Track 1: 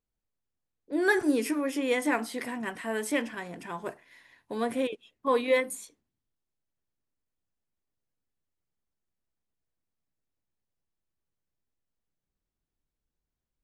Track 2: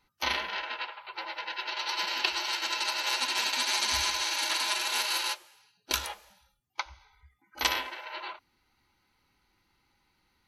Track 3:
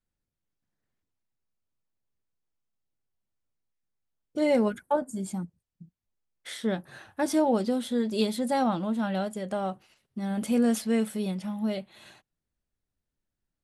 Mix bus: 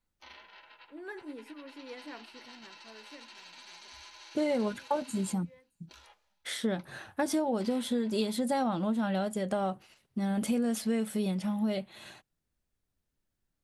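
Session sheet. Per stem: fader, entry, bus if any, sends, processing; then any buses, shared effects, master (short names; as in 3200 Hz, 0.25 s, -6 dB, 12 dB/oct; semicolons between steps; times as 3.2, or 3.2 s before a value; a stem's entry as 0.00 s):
-18.0 dB, 0.00 s, no send, high shelf 3800 Hz -9.5 dB; auto duck -16 dB, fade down 1.80 s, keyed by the third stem
-19.5 dB, 0.00 s, no send, Bessel low-pass 6400 Hz, order 2; limiter -20.5 dBFS, peak gain reduction 10.5 dB
+2.5 dB, 0.00 s, no send, compressor 6:1, threshold -29 dBFS, peak gain reduction 10 dB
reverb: off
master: dry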